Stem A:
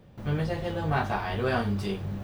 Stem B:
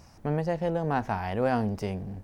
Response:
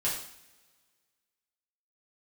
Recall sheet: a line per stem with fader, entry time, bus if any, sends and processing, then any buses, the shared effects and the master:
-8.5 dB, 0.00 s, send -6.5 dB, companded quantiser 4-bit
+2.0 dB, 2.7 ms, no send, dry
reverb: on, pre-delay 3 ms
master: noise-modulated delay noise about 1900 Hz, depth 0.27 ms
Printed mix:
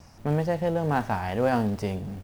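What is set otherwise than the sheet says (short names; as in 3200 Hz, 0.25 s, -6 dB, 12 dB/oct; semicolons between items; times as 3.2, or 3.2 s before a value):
stem A -8.5 dB -> -17.5 dB; master: missing noise-modulated delay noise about 1900 Hz, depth 0.27 ms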